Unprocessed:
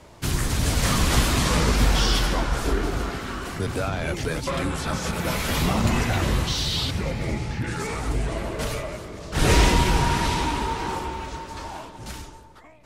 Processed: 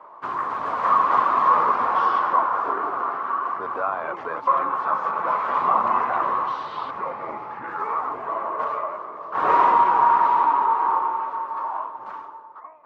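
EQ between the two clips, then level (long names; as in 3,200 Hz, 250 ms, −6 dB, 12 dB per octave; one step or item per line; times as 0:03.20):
high-pass filter 550 Hz 12 dB per octave
low-pass with resonance 1,100 Hz, resonance Q 7.2
0.0 dB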